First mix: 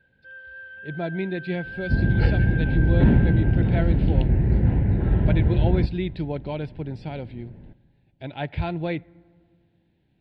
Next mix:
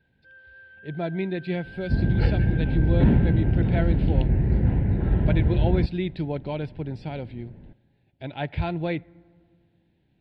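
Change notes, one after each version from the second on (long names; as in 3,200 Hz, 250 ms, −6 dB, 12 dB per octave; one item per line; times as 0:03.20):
first sound −8.0 dB
second sound: send −11.5 dB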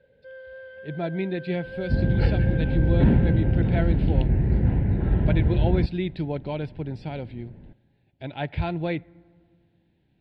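first sound: remove pair of resonant band-passes 2,100 Hz, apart 0.73 octaves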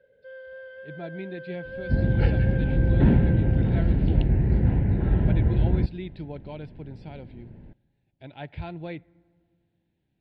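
speech −8.5 dB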